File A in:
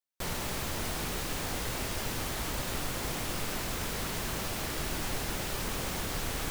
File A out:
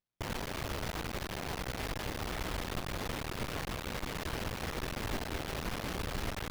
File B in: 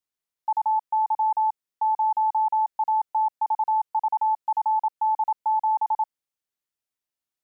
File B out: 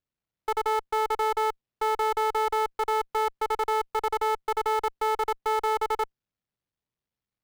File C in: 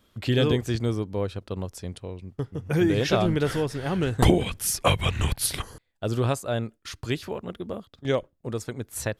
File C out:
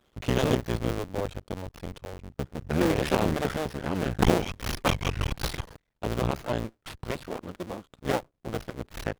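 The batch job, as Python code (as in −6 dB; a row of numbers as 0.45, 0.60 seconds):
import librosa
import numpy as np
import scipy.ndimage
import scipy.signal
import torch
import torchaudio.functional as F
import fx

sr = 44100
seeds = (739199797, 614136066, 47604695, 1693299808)

y = fx.cycle_switch(x, sr, every=2, mode='muted')
y = fx.high_shelf(y, sr, hz=7900.0, db=-2.0)
y = fx.running_max(y, sr, window=5)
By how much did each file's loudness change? −4.0, −3.0, −3.5 LU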